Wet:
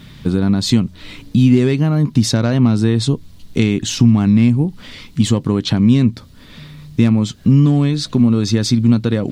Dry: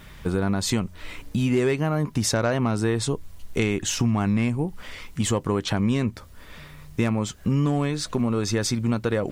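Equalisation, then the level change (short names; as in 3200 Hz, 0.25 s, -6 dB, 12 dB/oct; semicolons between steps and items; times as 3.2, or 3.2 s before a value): ten-band EQ 125 Hz +11 dB, 250 Hz +11 dB, 4000 Hz +11 dB; -1.0 dB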